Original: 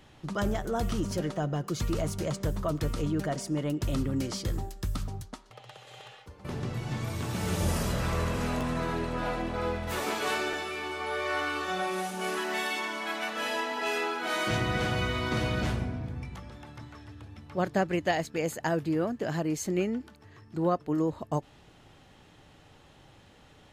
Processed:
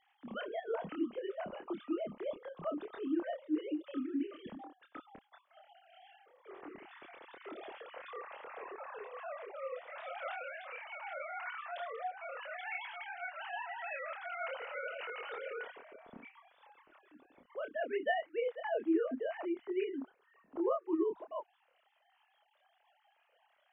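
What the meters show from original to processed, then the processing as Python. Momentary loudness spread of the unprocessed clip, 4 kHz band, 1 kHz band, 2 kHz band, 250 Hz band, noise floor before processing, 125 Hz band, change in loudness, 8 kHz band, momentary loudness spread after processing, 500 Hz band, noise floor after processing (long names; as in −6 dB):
13 LU, −16.5 dB, −9.5 dB, −9.5 dB, −8.0 dB, −56 dBFS, below −30 dB, −8.5 dB, below −40 dB, 17 LU, −6.0 dB, −74 dBFS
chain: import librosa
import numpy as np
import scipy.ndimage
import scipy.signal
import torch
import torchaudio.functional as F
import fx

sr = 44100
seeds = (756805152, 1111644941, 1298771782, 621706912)

y = fx.sine_speech(x, sr)
y = fx.chorus_voices(y, sr, voices=6, hz=0.13, base_ms=27, depth_ms=3.1, mix_pct=40)
y = y * 10.0 ** (-6.5 / 20.0)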